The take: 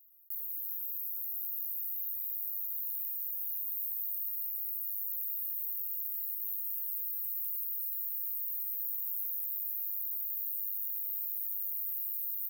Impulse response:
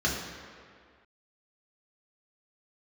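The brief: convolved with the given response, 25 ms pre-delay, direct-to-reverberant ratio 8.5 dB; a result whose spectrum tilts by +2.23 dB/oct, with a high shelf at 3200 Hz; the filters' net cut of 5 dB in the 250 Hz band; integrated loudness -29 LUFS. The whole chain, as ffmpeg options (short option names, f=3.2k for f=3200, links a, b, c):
-filter_complex "[0:a]equalizer=f=250:t=o:g=-9,highshelf=f=3.2k:g=4,asplit=2[a][b];[1:a]atrim=start_sample=2205,adelay=25[c];[b][c]afir=irnorm=-1:irlink=0,volume=-19.5dB[d];[a][d]amix=inputs=2:normalize=0"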